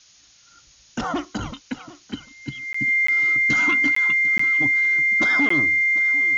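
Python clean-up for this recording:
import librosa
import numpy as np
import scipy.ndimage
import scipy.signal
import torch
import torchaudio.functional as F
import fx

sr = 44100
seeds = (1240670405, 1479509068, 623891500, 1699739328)

y = fx.notch(x, sr, hz=2100.0, q=30.0)
y = fx.fix_interpolate(y, sr, at_s=(2.73, 3.07, 3.95, 4.38, 5.49), length_ms=14.0)
y = fx.noise_reduce(y, sr, print_start_s=0.0, print_end_s=0.5, reduce_db=14.0)
y = fx.fix_echo_inverse(y, sr, delay_ms=747, level_db=-18.5)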